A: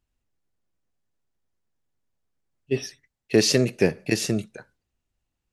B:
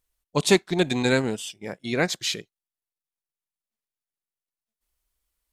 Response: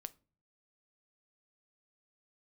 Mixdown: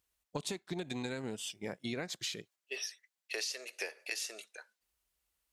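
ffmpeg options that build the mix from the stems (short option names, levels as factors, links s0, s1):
-filter_complex "[0:a]highpass=f=460:w=0.5412,highpass=f=460:w=1.3066,tiltshelf=f=920:g=-7.5,volume=0.944[s0];[1:a]highpass=53,acompressor=threshold=0.0891:ratio=6,volume=0.708,asplit=2[s1][s2];[s2]apad=whole_len=243551[s3];[s0][s3]sidechaingate=range=0.447:threshold=0.00158:ratio=16:detection=peak[s4];[s4][s1]amix=inputs=2:normalize=0,acompressor=threshold=0.0178:ratio=12"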